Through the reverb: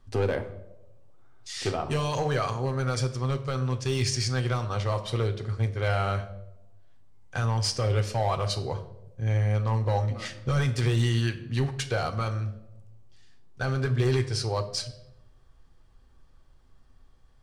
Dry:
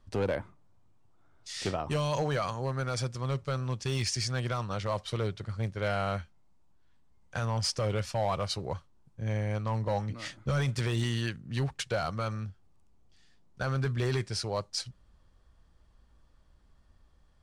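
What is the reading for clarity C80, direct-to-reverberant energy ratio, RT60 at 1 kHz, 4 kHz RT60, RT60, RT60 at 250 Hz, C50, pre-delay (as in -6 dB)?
15.5 dB, 7.0 dB, 0.75 s, 0.55 s, 0.90 s, 1.0 s, 13.0 dB, 3 ms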